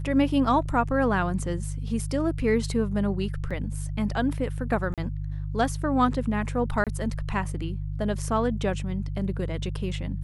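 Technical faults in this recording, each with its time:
hum 50 Hz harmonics 3 -31 dBFS
3.5–3.51 gap 6.1 ms
4.94–4.98 gap 37 ms
6.84–6.87 gap 27 ms

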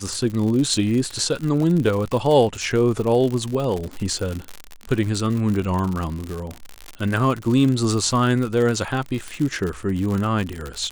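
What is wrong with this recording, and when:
crackle 84/s -24 dBFS

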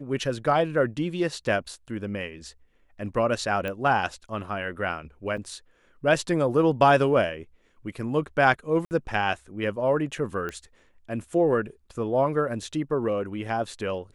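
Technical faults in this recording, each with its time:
3.68 pop -19 dBFS
5.37 gap 4.8 ms
8.85–8.91 gap 59 ms
10.49 pop -20 dBFS

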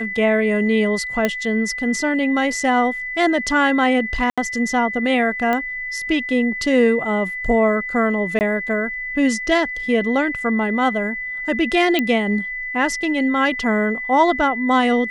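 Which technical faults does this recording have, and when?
tone 2000 Hz -25 dBFS
1.25 pop -5 dBFS
4.3–4.38 gap 76 ms
5.53 pop -10 dBFS
8.39–8.41 gap 19 ms
11.99 pop -6 dBFS

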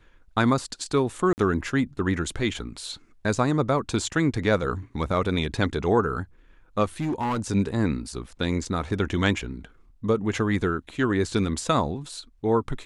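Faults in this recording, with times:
1.33–1.38 gap 49 ms
7–7.4 clipped -22.5 dBFS

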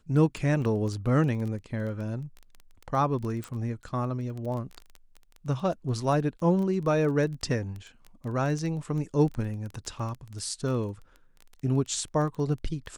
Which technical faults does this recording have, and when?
crackle 14/s -33 dBFS
3.44 pop

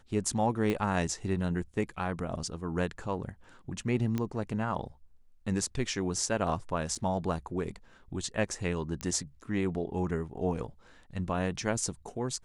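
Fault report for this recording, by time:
0.7 pop -18 dBFS
4.18 pop -19 dBFS
6.95–6.96 gap 5.7 ms
9.01 pop -20 dBFS

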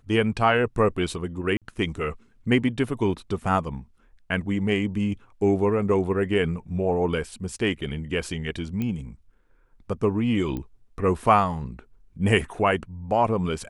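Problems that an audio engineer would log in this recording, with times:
1.57–1.62 gap 47 ms
8.82 pop -17 dBFS
10.57 pop -20 dBFS

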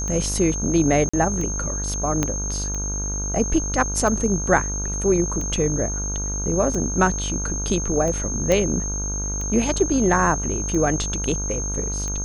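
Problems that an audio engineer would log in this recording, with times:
buzz 50 Hz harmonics 32 -28 dBFS
tick 45 rpm -18 dBFS
tone 6400 Hz -27 dBFS
1.09–1.14 gap 45 ms
2.23 pop -7 dBFS
8.52 pop -7 dBFS

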